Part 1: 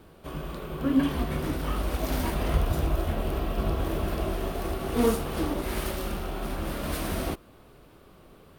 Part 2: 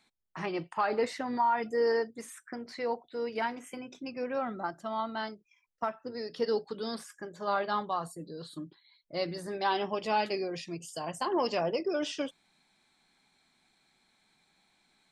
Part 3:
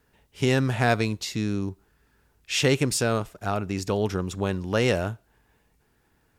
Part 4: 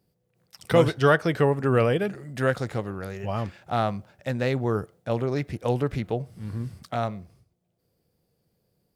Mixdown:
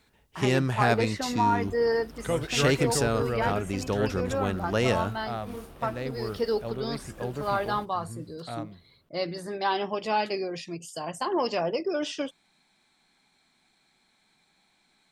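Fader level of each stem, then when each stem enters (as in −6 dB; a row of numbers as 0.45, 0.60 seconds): −17.0, +2.5, −2.5, −9.5 decibels; 0.50, 0.00, 0.00, 1.55 seconds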